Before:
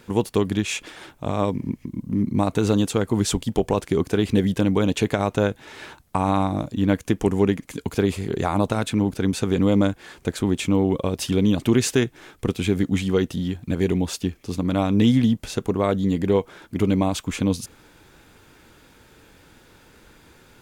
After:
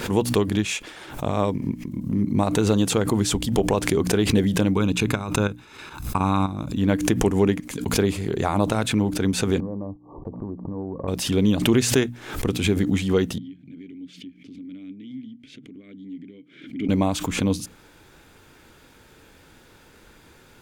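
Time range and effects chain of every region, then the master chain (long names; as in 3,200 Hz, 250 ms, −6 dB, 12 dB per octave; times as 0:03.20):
0:04.74–0:06.76: comb filter 0.8 ms, depth 50% + output level in coarse steps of 10 dB
0:09.60–0:11.08: linear-phase brick-wall low-pass 1,200 Hz + downward compressor, threshold −27 dBFS + noise gate −45 dBFS, range −22 dB
0:13.38–0:16.89: parametric band 140 Hz +13.5 dB 0.36 octaves + downward compressor 4 to 1, threshold −27 dBFS + formant filter i
whole clip: mains-hum notches 60/120/180/240/300 Hz; background raised ahead of every attack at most 89 dB per second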